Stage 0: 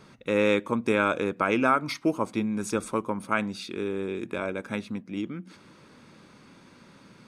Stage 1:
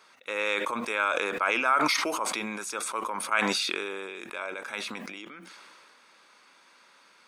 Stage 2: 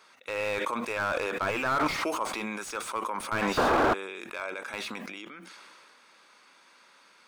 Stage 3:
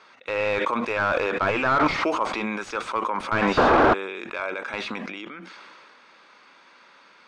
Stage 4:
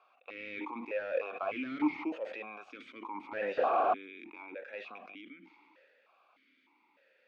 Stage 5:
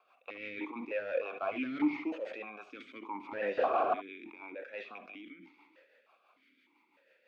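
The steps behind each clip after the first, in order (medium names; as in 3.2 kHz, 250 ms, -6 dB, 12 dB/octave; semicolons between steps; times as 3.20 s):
high-pass 840 Hz 12 dB/octave; decay stretcher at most 21 dB/s
painted sound noise, 3.57–3.94 s, 230–1700 Hz -20 dBFS; slew-rate limiter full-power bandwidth 83 Hz
distance through air 140 m; trim +7 dB
stepped vowel filter 3.3 Hz; trim -3 dB
rotary cabinet horn 6 Hz; reverberation, pre-delay 61 ms, DRR 13.5 dB; trim +2.5 dB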